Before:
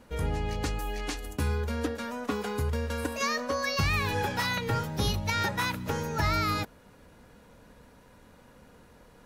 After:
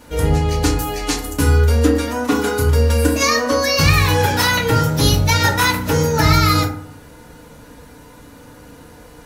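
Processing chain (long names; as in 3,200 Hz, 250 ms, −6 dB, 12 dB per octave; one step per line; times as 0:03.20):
high-shelf EQ 3,600 Hz +9 dB
feedback delay network reverb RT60 0.58 s, low-frequency decay 1.35×, high-frequency decay 0.45×, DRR −2 dB
level +7.5 dB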